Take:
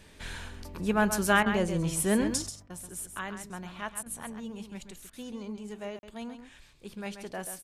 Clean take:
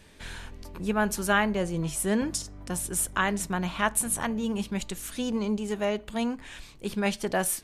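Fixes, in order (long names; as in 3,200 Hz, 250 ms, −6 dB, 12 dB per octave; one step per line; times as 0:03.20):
repair the gap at 0:05.99, 41 ms
repair the gap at 0:01.43/0:02.67/0:04.03/0:05.10, 30 ms
echo removal 134 ms −9 dB
level correction +11.5 dB, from 0:02.49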